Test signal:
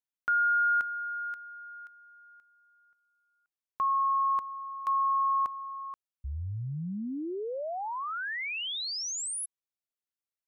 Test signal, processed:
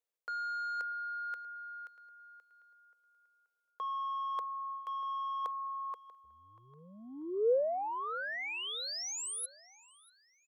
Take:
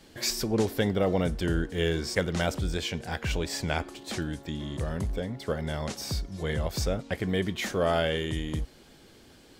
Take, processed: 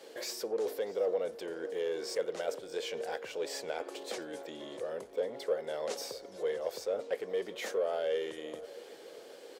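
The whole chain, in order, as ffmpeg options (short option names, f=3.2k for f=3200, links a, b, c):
-filter_complex "[0:a]alimiter=limit=-21.5dB:level=0:latency=1:release=240,asoftclip=type=tanh:threshold=-25dB,areverse,acompressor=threshold=-39dB:ratio=6:attack=54:release=175:knee=1:detection=rms,areverse,highpass=f=480:t=q:w=4.9,asplit=2[a][b];[b]adelay=639,lowpass=f=4.8k:p=1,volume=-18.5dB,asplit=2[c][d];[d]adelay=639,lowpass=f=4.8k:p=1,volume=0.43,asplit=2[e][f];[f]adelay=639,lowpass=f=4.8k:p=1,volume=0.43[g];[a][c][e][g]amix=inputs=4:normalize=0"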